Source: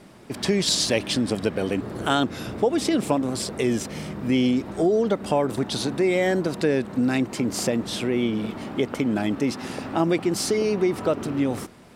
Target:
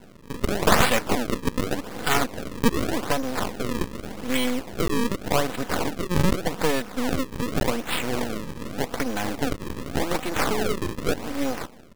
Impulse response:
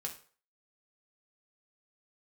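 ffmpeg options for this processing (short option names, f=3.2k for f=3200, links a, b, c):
-filter_complex "[0:a]tiltshelf=f=1.1k:g=-3.5,aecho=1:1:4:0.52,acrossover=split=300|2400[a][b][c];[a]acompressor=threshold=-38dB:ratio=6[d];[d][b][c]amix=inputs=3:normalize=0,acrusher=samples=35:mix=1:aa=0.000001:lfo=1:lforange=56:lforate=0.85,aeval=exprs='max(val(0),0)':c=same,volume=5dB"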